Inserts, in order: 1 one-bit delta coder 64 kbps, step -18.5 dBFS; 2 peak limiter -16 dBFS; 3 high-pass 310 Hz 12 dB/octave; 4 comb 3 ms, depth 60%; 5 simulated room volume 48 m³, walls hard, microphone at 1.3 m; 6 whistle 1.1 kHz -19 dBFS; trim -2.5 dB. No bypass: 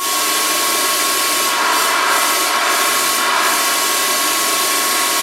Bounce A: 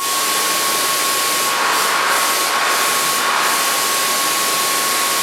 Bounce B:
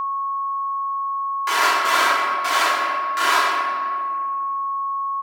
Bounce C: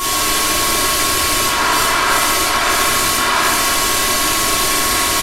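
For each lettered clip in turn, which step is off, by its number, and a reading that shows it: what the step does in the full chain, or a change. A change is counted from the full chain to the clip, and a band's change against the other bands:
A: 4, 250 Hz band -1.5 dB; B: 1, 8 kHz band -10.5 dB; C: 3, 250 Hz band +3.5 dB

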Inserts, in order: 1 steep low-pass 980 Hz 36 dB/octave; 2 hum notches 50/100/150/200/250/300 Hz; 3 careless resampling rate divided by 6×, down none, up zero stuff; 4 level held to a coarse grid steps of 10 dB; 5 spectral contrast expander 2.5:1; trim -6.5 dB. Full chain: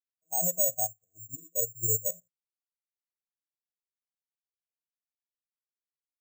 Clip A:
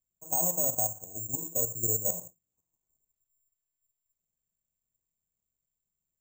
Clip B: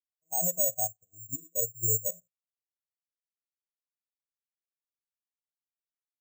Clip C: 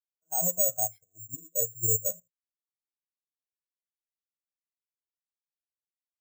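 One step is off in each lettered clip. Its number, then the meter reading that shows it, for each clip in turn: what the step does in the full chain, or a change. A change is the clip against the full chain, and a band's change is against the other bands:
5, 250 Hz band +4.5 dB; 2, momentary loudness spread change -5 LU; 1, loudness change +1.0 LU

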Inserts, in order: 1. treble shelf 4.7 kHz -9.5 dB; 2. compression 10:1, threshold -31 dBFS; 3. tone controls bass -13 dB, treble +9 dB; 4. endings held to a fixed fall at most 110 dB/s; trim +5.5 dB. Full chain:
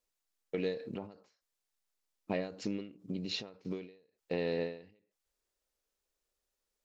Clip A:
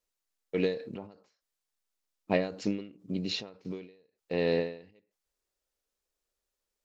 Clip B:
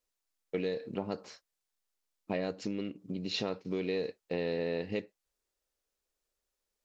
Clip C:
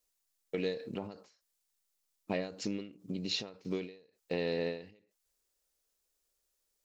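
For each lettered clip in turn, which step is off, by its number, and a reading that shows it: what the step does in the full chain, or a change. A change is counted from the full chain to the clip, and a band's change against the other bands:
2, mean gain reduction 6.0 dB; 4, crest factor change -2.5 dB; 1, 4 kHz band +3.0 dB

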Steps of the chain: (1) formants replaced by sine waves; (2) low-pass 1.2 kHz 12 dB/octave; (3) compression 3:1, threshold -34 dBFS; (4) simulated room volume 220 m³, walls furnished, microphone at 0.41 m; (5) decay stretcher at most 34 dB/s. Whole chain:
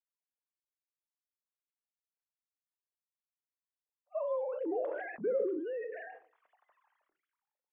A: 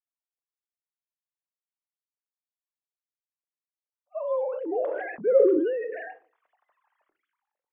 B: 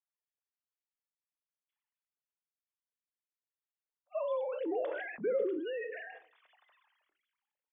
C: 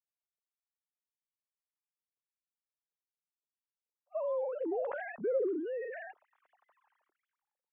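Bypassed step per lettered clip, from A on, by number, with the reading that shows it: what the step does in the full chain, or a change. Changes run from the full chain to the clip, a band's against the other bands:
3, mean gain reduction 5.5 dB; 2, 2 kHz band +3.5 dB; 4, crest factor change -3.0 dB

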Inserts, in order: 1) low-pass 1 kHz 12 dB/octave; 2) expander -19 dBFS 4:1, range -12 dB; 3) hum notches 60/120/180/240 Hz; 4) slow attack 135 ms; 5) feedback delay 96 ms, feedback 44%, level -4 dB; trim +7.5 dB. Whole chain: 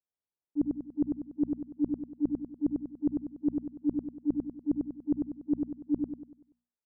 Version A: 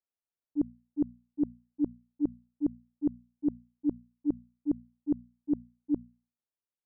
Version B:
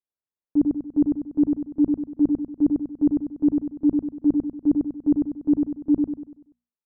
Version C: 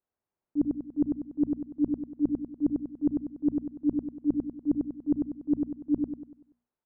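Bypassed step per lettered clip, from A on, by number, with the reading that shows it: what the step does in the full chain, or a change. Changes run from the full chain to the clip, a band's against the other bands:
5, echo-to-direct -3.0 dB to none; 4, crest factor change -3.5 dB; 2, loudness change +3.0 LU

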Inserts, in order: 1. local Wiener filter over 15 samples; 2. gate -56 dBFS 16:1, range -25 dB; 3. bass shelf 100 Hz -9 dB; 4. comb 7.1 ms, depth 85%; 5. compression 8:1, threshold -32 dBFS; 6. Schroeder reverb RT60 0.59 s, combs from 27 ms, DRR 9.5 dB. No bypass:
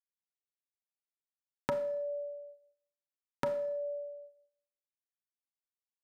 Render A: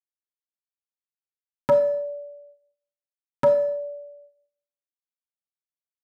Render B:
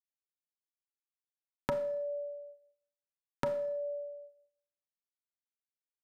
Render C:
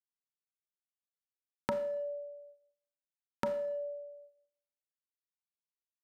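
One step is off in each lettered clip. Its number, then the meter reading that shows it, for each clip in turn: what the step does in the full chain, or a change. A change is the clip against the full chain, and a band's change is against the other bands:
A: 5, mean gain reduction 6.0 dB; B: 3, 125 Hz band +2.5 dB; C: 4, 125 Hz band -2.0 dB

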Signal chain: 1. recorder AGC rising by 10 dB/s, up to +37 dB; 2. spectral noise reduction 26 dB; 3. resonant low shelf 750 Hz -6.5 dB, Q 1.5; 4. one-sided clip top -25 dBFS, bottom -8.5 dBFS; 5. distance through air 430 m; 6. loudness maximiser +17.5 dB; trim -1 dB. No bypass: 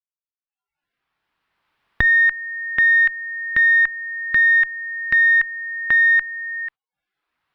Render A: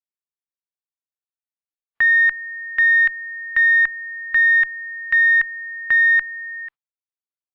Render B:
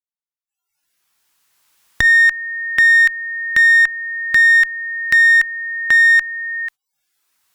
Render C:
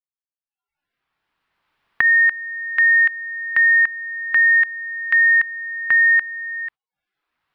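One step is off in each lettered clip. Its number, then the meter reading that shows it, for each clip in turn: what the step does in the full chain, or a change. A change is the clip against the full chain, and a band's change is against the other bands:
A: 1, crest factor change -7.5 dB; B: 5, crest factor change -4.0 dB; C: 4, distortion -14 dB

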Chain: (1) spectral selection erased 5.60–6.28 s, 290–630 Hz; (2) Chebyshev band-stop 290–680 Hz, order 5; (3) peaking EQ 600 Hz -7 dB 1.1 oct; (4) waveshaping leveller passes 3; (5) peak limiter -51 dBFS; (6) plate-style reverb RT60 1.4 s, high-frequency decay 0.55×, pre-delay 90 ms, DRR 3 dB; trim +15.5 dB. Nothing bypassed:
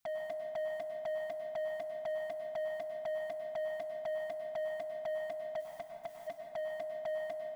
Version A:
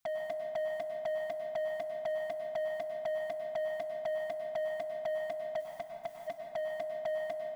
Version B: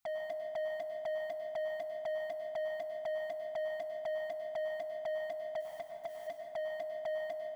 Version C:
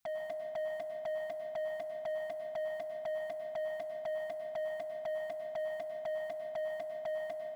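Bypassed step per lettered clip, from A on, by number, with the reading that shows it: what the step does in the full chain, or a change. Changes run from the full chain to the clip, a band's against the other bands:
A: 5, mean gain reduction 2.0 dB; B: 3, 4 kHz band +2.0 dB; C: 1, momentary loudness spread change -3 LU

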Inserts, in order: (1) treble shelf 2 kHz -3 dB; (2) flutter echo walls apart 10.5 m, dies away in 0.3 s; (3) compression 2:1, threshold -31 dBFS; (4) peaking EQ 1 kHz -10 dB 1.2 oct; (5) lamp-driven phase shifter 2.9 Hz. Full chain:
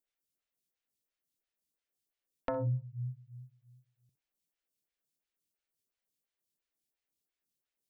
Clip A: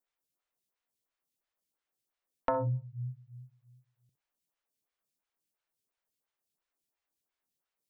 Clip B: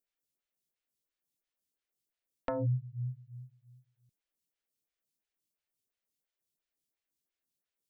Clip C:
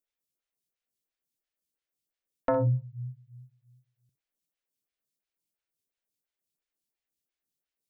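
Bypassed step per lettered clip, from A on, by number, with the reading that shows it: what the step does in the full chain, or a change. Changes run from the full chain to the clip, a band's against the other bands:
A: 4, 1 kHz band +7.0 dB; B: 2, 250 Hz band +2.5 dB; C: 3, momentary loudness spread change -3 LU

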